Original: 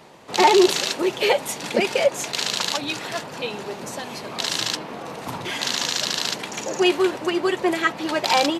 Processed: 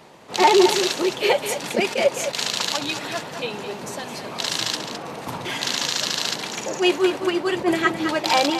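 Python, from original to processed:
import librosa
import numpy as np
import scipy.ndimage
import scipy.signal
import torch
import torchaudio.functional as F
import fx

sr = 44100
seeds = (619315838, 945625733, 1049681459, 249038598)

y = fx.low_shelf(x, sr, hz=270.0, db=8.5, at=(7.55, 8.11))
y = y + 10.0 ** (-9.5 / 20.0) * np.pad(y, (int(212 * sr / 1000.0), 0))[:len(y)]
y = fx.attack_slew(y, sr, db_per_s=250.0)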